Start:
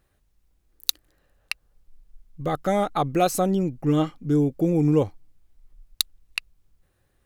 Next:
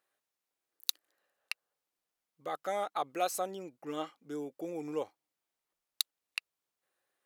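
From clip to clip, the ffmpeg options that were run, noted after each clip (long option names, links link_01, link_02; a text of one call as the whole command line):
ffmpeg -i in.wav -af "highpass=550,volume=-8.5dB" out.wav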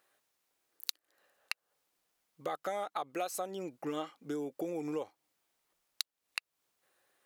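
ffmpeg -i in.wav -af "acompressor=threshold=-43dB:ratio=5,volume=8.5dB" out.wav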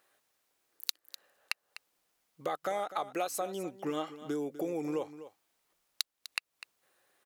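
ffmpeg -i in.wav -af "aecho=1:1:250:0.2,volume=2.5dB" out.wav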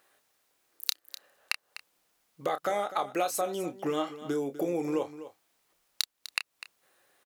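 ffmpeg -i in.wav -filter_complex "[0:a]asplit=2[link_01][link_02];[link_02]adelay=29,volume=-10dB[link_03];[link_01][link_03]amix=inputs=2:normalize=0,volume=4dB" out.wav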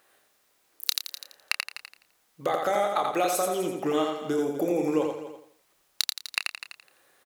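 ffmpeg -i in.wav -af "aecho=1:1:85|170|255|340:0.631|0.221|0.0773|0.0271,volume=3dB" out.wav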